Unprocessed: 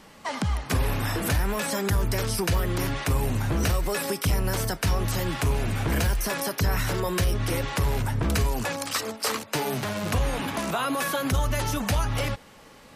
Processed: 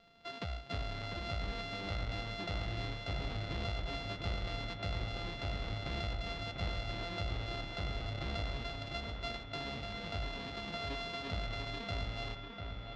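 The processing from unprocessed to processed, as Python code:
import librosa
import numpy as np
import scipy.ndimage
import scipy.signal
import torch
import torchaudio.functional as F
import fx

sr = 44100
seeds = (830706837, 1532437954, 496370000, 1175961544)

y = np.r_[np.sort(x[:len(x) // 64 * 64].reshape(-1, 64), axis=1).ravel(), x[len(x) // 64 * 64:]]
y = fx.ladder_lowpass(y, sr, hz=4600.0, resonance_pct=45)
y = fx.echo_wet_lowpass(y, sr, ms=696, feedback_pct=58, hz=2900.0, wet_db=-5)
y = y * 10.0 ** (-6.0 / 20.0)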